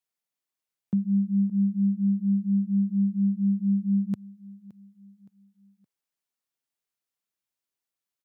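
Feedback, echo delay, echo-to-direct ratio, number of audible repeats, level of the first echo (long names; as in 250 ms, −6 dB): 40%, 568 ms, −19.5 dB, 2, −20.0 dB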